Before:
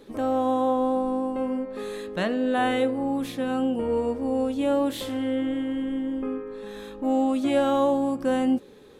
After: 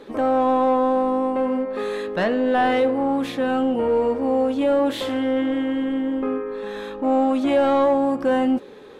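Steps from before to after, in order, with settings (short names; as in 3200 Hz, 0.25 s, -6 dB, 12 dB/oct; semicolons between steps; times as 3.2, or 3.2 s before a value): in parallel at -3 dB: hard clip -24.5 dBFS, distortion -9 dB; on the sum: overdrive pedal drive 13 dB, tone 1600 Hz, clips at -9 dBFS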